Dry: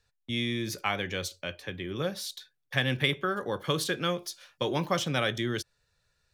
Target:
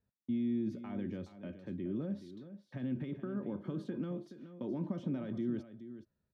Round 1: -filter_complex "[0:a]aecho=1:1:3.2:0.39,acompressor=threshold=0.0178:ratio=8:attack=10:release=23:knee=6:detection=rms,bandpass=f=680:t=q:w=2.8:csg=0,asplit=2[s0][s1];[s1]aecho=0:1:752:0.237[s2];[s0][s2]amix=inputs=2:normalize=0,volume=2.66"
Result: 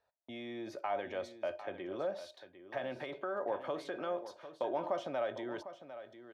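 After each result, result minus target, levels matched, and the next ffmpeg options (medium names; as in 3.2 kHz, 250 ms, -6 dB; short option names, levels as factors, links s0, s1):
echo 329 ms late; 250 Hz band -9.5 dB
-filter_complex "[0:a]aecho=1:1:3.2:0.39,acompressor=threshold=0.0178:ratio=8:attack=10:release=23:knee=6:detection=rms,bandpass=f=680:t=q:w=2.8:csg=0,asplit=2[s0][s1];[s1]aecho=0:1:423:0.237[s2];[s0][s2]amix=inputs=2:normalize=0,volume=2.66"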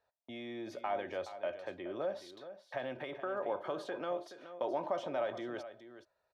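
250 Hz band -10.0 dB
-filter_complex "[0:a]aecho=1:1:3.2:0.39,acompressor=threshold=0.0178:ratio=8:attack=10:release=23:knee=6:detection=rms,bandpass=f=210:t=q:w=2.8:csg=0,asplit=2[s0][s1];[s1]aecho=0:1:423:0.237[s2];[s0][s2]amix=inputs=2:normalize=0,volume=2.66"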